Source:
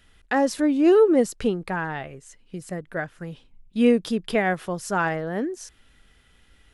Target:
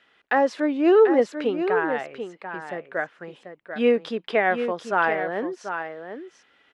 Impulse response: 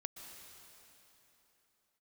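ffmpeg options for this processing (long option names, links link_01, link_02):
-filter_complex "[0:a]highpass=400,lowpass=3000,asplit=2[link_01][link_02];[link_02]aecho=0:1:740:0.376[link_03];[link_01][link_03]amix=inputs=2:normalize=0,volume=3dB"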